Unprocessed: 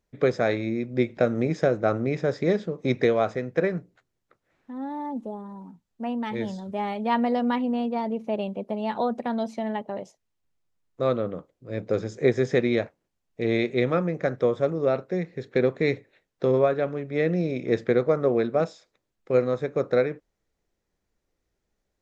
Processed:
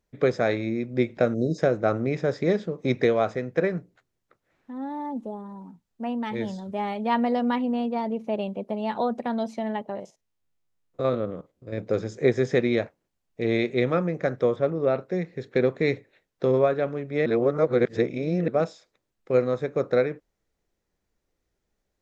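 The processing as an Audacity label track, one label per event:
1.340000	1.590000	time-frequency box erased 720–3,700 Hz
9.950000	11.780000	spectrum averaged block by block every 50 ms
14.560000	15.010000	low-pass filter 3,900 Hz
17.260000	18.480000	reverse

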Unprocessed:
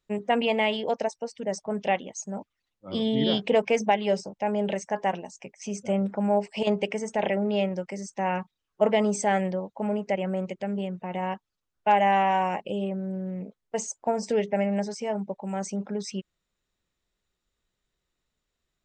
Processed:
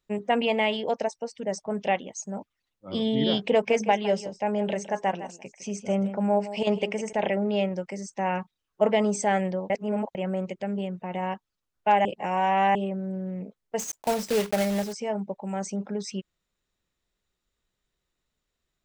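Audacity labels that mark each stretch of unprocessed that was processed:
3.520000	7.130000	single-tap delay 158 ms −13.5 dB
9.700000	10.150000	reverse
12.050000	12.750000	reverse
13.790000	14.950000	one scale factor per block 3 bits

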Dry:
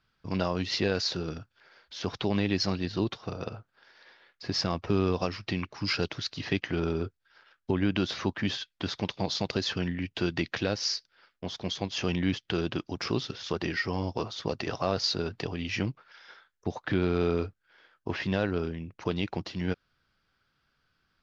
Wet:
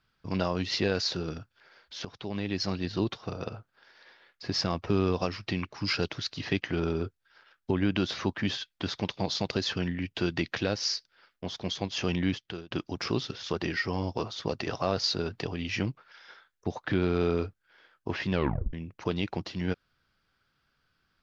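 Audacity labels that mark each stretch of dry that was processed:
2.050000	2.920000	fade in, from −14.5 dB
12.260000	12.710000	fade out
18.320000	18.320000	tape stop 0.41 s

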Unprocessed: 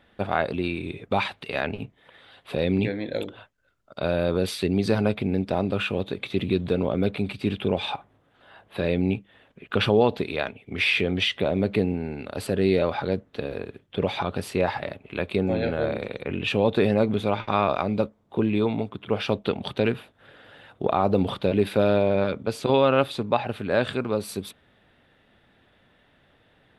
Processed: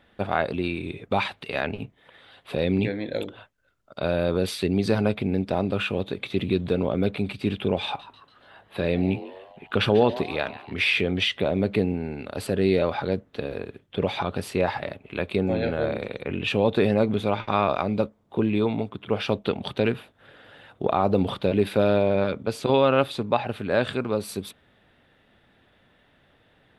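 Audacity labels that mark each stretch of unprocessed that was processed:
7.850000	10.740000	echo with shifted repeats 143 ms, feedback 50%, per repeat +140 Hz, level −16 dB

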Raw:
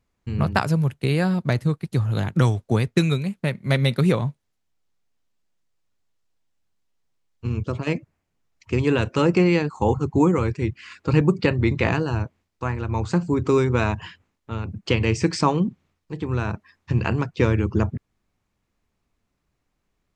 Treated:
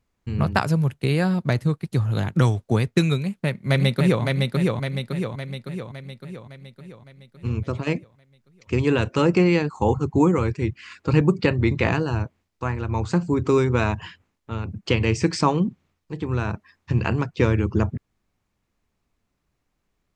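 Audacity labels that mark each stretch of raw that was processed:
3.190000	4.230000	delay throw 560 ms, feedback 55%, level −2.5 dB

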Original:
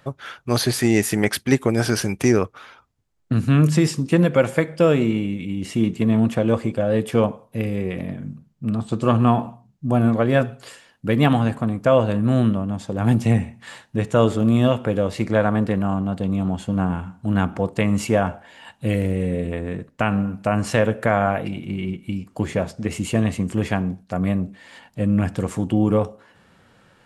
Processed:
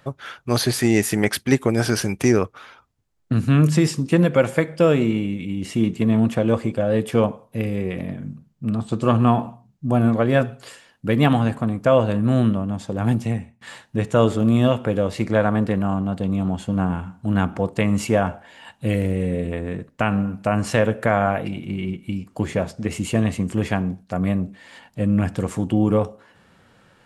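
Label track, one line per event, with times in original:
12.940000	13.610000	fade out, to −20.5 dB

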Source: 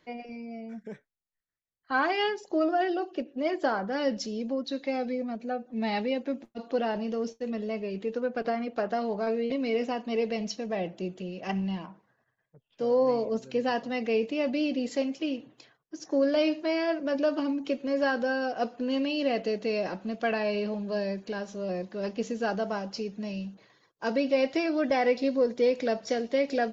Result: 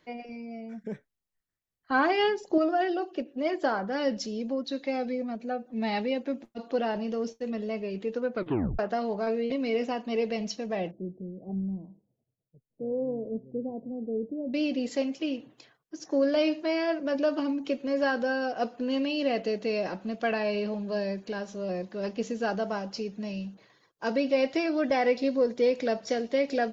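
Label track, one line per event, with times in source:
0.840000	2.580000	low-shelf EQ 450 Hz +7.5 dB
8.340000	8.340000	tape stop 0.45 s
10.910000	14.540000	Gaussian smoothing sigma 18 samples

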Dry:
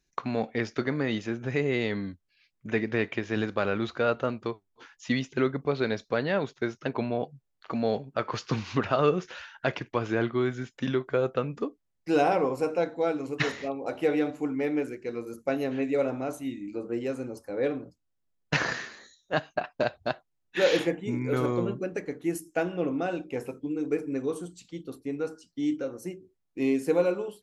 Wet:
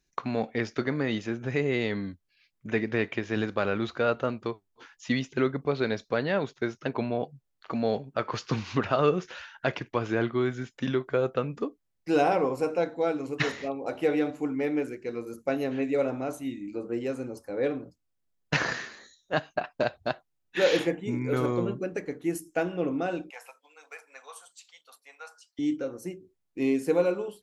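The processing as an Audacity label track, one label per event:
23.300000	25.590000	inverse Chebyshev high-pass filter stop band from 370 Hz

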